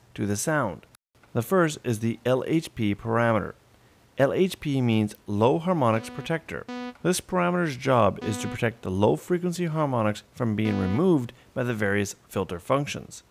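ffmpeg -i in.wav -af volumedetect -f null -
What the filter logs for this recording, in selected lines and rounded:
mean_volume: -25.6 dB
max_volume: -8.3 dB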